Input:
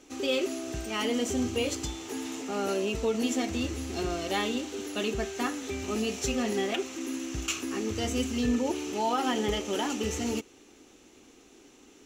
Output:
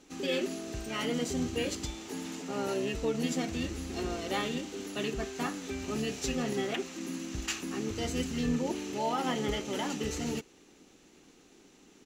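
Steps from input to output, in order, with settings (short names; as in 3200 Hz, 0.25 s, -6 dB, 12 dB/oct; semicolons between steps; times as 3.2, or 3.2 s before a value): harmoniser -7 st -7 dB; gain -4 dB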